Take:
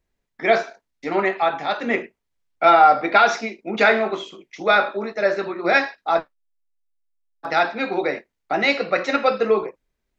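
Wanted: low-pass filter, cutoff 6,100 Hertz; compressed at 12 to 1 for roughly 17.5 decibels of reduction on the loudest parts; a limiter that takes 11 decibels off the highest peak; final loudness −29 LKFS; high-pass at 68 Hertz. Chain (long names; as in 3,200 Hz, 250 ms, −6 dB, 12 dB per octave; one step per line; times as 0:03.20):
high-pass filter 68 Hz
low-pass filter 6,100 Hz
downward compressor 12 to 1, threshold −27 dBFS
level +7.5 dB
brickwall limiter −19 dBFS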